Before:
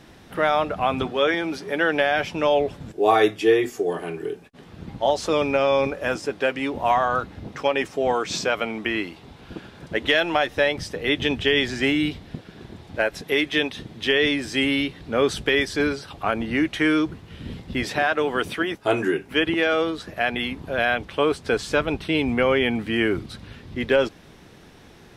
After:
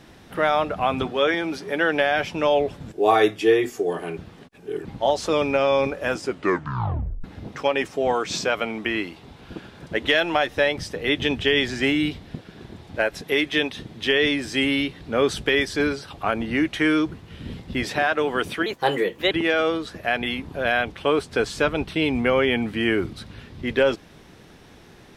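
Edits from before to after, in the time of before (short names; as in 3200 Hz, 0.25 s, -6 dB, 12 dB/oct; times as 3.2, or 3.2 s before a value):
4.17–4.85 reverse
6.21 tape stop 1.03 s
18.66–19.44 speed 120%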